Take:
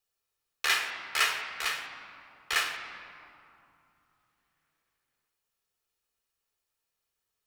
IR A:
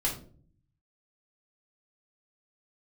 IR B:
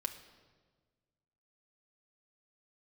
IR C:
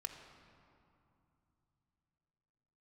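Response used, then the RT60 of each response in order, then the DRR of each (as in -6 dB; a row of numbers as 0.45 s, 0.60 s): C; 0.45 s, 1.5 s, 2.8 s; -5.0 dB, 3.0 dB, 3.5 dB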